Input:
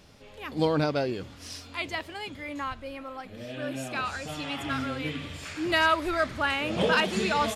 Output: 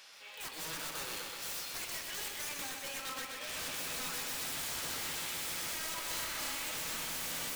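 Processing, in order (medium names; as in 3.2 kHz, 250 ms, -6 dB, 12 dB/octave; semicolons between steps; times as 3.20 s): high-pass 1.3 kHz 12 dB/octave; peak limiter -24.5 dBFS, peak gain reduction 11.5 dB; compression 20:1, threshold -38 dBFS, peak gain reduction 9.5 dB; integer overflow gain 41.5 dB; 6.07–6.55 s: flutter echo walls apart 5.3 m, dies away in 0.45 s; on a send at -9 dB: reverberation RT60 0.50 s, pre-delay 3 ms; on the sum: bit-crushed delay 126 ms, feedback 80%, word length 11-bit, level -5 dB; trim +5 dB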